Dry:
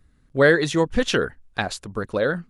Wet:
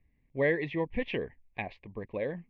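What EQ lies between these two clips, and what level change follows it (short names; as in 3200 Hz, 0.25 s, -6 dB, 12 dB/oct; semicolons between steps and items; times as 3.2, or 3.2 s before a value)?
Butterworth band-stop 1400 Hz, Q 1.6; ladder low-pass 2500 Hz, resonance 65%; air absorption 140 m; 0.0 dB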